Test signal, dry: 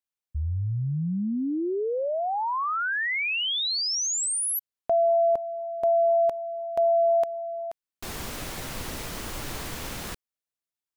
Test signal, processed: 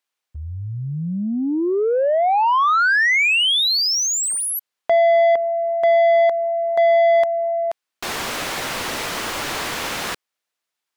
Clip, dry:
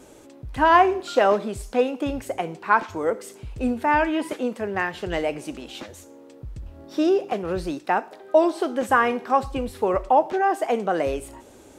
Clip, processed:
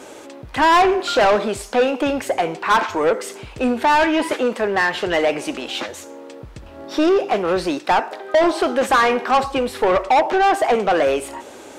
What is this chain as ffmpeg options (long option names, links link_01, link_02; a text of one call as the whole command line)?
ffmpeg -i in.wav -filter_complex "[0:a]asplit=2[link_01][link_02];[link_02]highpass=frequency=720:poles=1,volume=24dB,asoftclip=type=tanh:threshold=-4dB[link_03];[link_01][link_03]amix=inputs=2:normalize=0,lowpass=frequency=3800:poles=1,volume=-6dB,volume=-3dB" out.wav